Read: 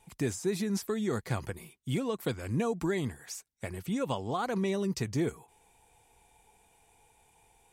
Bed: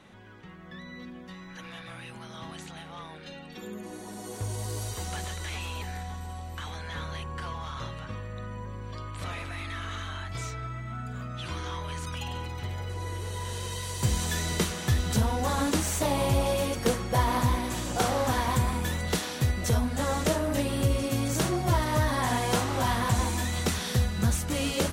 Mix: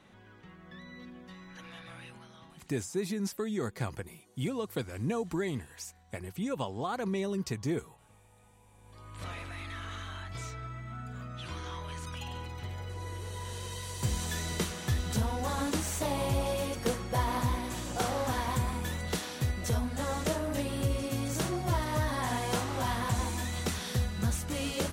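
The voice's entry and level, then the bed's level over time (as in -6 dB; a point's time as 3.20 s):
2.50 s, -2.0 dB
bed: 2.05 s -5 dB
2.99 s -25 dB
8.68 s -25 dB
9.22 s -5 dB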